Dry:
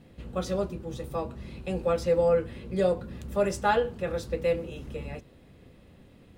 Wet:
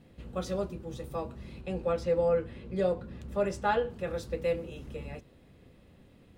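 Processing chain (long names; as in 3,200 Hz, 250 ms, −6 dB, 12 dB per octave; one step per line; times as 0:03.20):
0:01.61–0:03.90: high-shelf EQ 7,200 Hz −10.5 dB
level −3.5 dB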